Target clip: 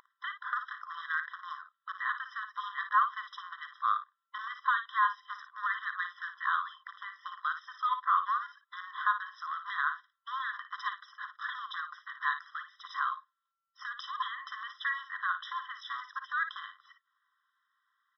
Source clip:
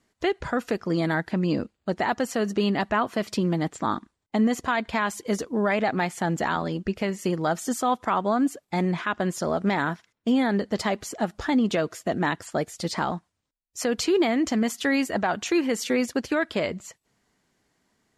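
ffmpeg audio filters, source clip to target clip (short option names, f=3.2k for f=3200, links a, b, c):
-filter_complex "[0:a]tiltshelf=f=730:g=9.5,aresample=11025,volume=11dB,asoftclip=hard,volume=-11dB,aresample=44100,aeval=exprs='val(0)+0.0447*sin(2*PI*450*n/s)':c=same,acontrast=35,equalizer=f=490:w=0.9:g=14.5,asplit=2[a][b];[b]aecho=0:1:40|56:0.1|0.335[c];[a][c]amix=inputs=2:normalize=0,afftfilt=real='re*eq(mod(floor(b*sr/1024/1000),2),1)':imag='im*eq(mod(floor(b*sr/1024/1000),2),1)':win_size=1024:overlap=0.75,volume=-3.5dB"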